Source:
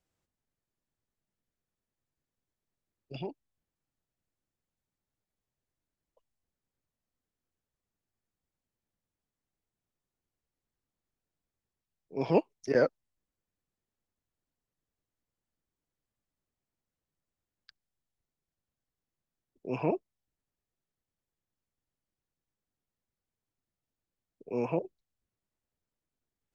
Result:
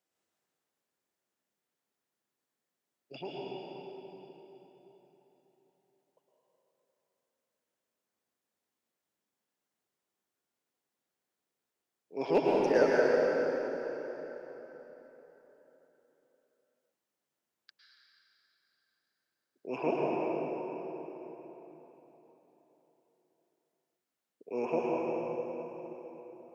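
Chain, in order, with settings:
high-pass filter 290 Hz 12 dB per octave
gain into a clipping stage and back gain 16.5 dB
dense smooth reverb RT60 4.1 s, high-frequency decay 0.75×, pre-delay 95 ms, DRR −5 dB
level −1 dB

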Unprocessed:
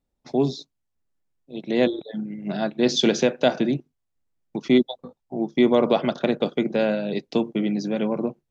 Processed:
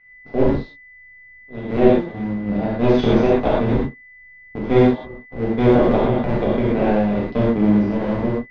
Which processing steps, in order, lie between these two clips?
sub-harmonics by changed cycles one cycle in 2, muted
spectral tilt −2.5 dB per octave
steady tone 2,000 Hz −49 dBFS
high-frequency loss of the air 250 metres
reverb whose tail is shaped and stops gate 150 ms flat, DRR −7 dB
level −3 dB

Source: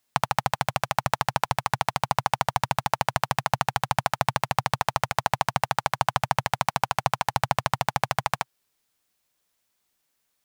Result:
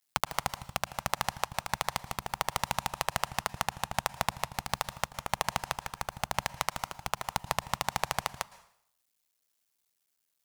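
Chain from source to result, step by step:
sub-harmonics by changed cycles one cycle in 2, muted
high-shelf EQ 3,300 Hz +7.5 dB
dense smooth reverb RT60 0.66 s, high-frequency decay 0.95×, pre-delay 100 ms, DRR 17.5 dB
level −7 dB

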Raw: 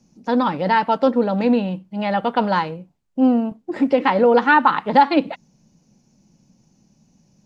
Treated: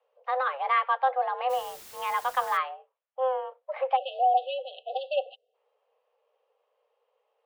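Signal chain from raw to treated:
single-sideband voice off tune +260 Hz 290–3,200 Hz
0:01.49–0:02.56: background noise white −41 dBFS
0:03.96–0:05.54: time-frequency box erased 790–2,600 Hz
level −7 dB

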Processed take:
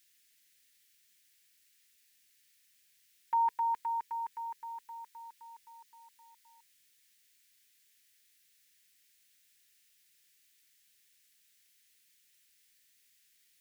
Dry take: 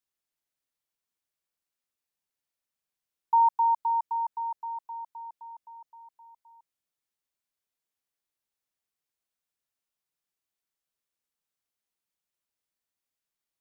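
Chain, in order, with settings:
drawn EQ curve 450 Hz 0 dB, 650 Hz −17 dB, 980 Hz −16 dB, 1,800 Hz +12 dB
level +8.5 dB

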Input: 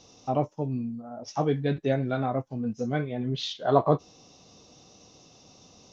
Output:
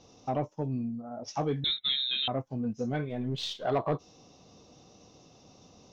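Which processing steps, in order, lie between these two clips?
0:03.09–0:03.65: gain on one half-wave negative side −3 dB
downward compressor 1.5 to 1, threshold −30 dBFS, peak gain reduction 6 dB
soft clipping −20 dBFS, distortion −17 dB
0:01.64–0:02.28: voice inversion scrambler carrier 3,900 Hz
one half of a high-frequency compander decoder only

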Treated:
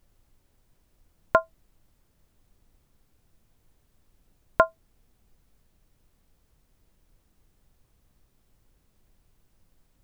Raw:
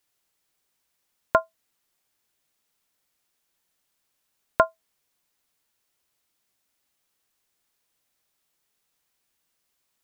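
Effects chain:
background noise brown −63 dBFS

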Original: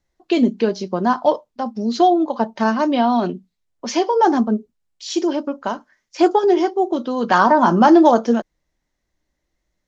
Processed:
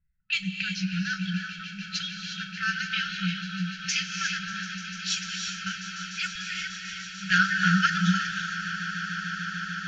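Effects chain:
brick-wall band-stop 200–1,300 Hz
low-pass that shuts in the quiet parts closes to 940 Hz, open at −26.5 dBFS
parametric band 2,600 Hz +9.5 dB 0.2 octaves
echo that builds up and dies away 148 ms, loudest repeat 8, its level −16.5 dB
reverb whose tail is shaped and stops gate 390 ms rising, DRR 4 dB

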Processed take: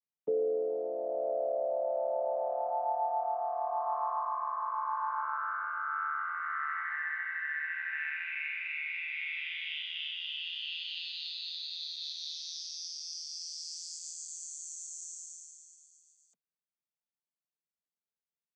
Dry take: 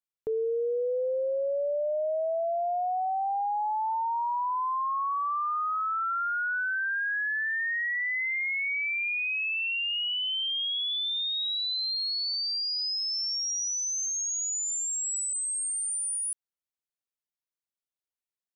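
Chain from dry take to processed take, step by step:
channel vocoder with a chord as carrier minor triad, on D3
low-shelf EQ 410 Hz −5 dB
level −4 dB

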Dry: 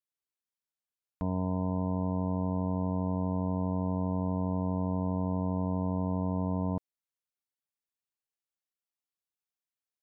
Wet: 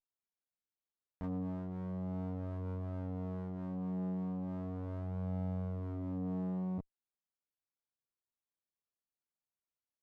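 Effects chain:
treble cut that deepens with the level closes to 600 Hz, closed at −27 dBFS
multi-voice chorus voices 2, 0.37 Hz, delay 25 ms, depth 2 ms
windowed peak hold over 17 samples
level −4 dB

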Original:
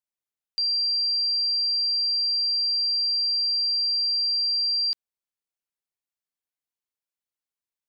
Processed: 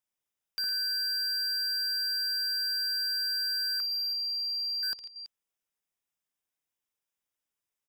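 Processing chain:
0:03.80–0:04.83: parametric band 4,400 Hz −13 dB 0.44 octaves
Butterworth band-reject 4,300 Hz, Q 5.9
multi-tap delay 59/61/109/144/330 ms −14/−18.5/−16.5/−18/−19 dB
slew-rate limiting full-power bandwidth 100 Hz
level +3 dB

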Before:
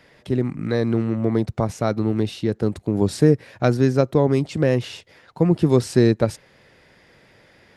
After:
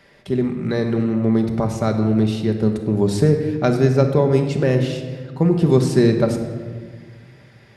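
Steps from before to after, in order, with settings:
rectangular room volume 1,800 cubic metres, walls mixed, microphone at 1.2 metres

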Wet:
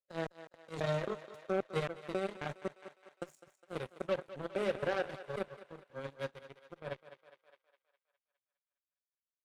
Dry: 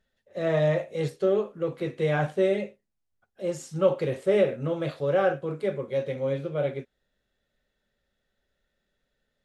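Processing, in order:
slices reordered back to front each 268 ms, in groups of 2
high-shelf EQ 6,000 Hz +11.5 dB
harmonic generator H 7 −17 dB, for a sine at −10 dBFS
brickwall limiter −15 dBFS, peak gain reduction 4.5 dB
feedback echo with a high-pass in the loop 205 ms, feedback 58%, high-pass 370 Hz, level −13.5 dB
amplitude modulation by smooth noise, depth 60%
level −5.5 dB

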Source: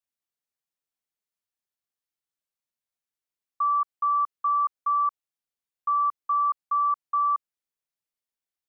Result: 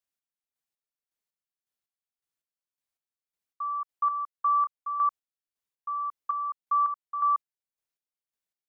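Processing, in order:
square-wave tremolo 1.8 Hz, depth 60%, duty 35%

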